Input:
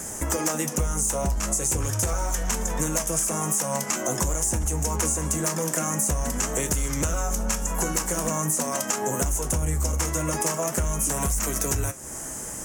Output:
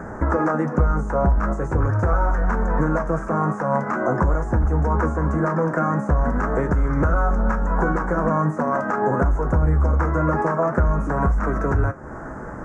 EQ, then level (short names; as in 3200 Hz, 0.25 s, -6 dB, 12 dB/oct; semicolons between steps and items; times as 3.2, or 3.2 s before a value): tape spacing loss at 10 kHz 34 dB; resonant high shelf 2100 Hz -12.5 dB, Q 3; +8.0 dB